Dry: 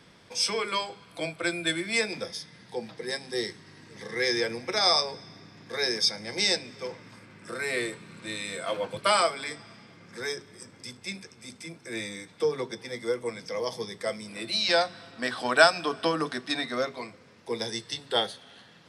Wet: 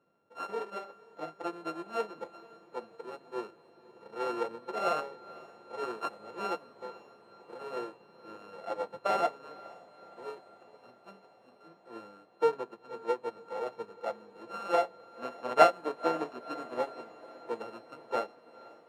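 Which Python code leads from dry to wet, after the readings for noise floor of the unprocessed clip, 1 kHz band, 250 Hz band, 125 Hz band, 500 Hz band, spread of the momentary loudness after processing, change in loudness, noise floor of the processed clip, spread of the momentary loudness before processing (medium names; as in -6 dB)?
-55 dBFS, -1.5 dB, -7.5 dB, -13.5 dB, -3.5 dB, 19 LU, -6.0 dB, -61 dBFS, 18 LU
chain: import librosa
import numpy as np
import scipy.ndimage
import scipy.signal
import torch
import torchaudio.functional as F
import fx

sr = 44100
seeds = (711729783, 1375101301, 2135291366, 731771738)

y = np.r_[np.sort(x[:len(x) // 32 * 32].reshape(-1, 32), axis=1).ravel(), x[len(x) // 32 * 32:]]
y = fx.bandpass_q(y, sr, hz=560.0, q=1.2)
y = fx.echo_diffused(y, sr, ms=506, feedback_pct=77, wet_db=-13.5)
y = fx.upward_expand(y, sr, threshold_db=-50.0, expansion=1.5)
y = y * librosa.db_to_amplitude(5.0)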